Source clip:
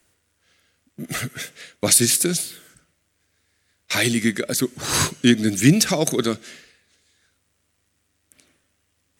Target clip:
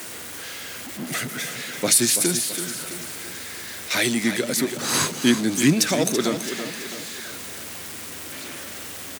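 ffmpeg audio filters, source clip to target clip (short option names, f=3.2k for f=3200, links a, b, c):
-filter_complex "[0:a]aeval=exprs='val(0)+0.5*0.0447*sgn(val(0))':c=same,highpass=170,asplit=2[a][b];[b]aecho=0:1:332|664|996|1328|1660:0.335|0.161|0.0772|0.037|0.0178[c];[a][c]amix=inputs=2:normalize=0,volume=-2.5dB"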